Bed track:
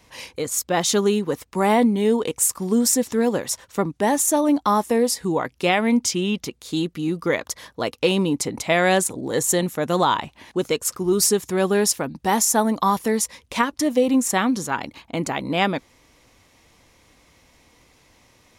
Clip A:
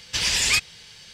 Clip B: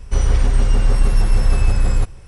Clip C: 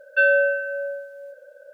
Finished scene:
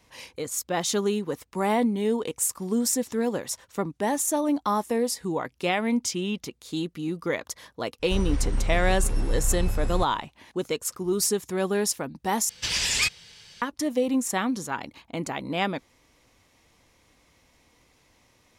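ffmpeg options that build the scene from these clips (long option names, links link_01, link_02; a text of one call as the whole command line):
ffmpeg -i bed.wav -i cue0.wav -i cue1.wav -filter_complex "[0:a]volume=-6dB,asplit=2[link_01][link_02];[link_01]atrim=end=12.494[link_03];[1:a]atrim=end=1.13,asetpts=PTS-STARTPTS,volume=-3.5dB[link_04];[link_02]atrim=start=13.616[link_05];[2:a]atrim=end=2.27,asetpts=PTS-STARTPTS,volume=-11dB,afade=type=in:duration=0.05,afade=type=out:start_time=2.22:duration=0.05,adelay=7990[link_06];[link_03][link_04]acrossfade=duration=0.004:curve1=hsin:curve2=hsin[link_07];[link_07][link_05]acrossfade=duration=0.004:curve1=hsin:curve2=hsin[link_08];[link_08][link_06]amix=inputs=2:normalize=0" out.wav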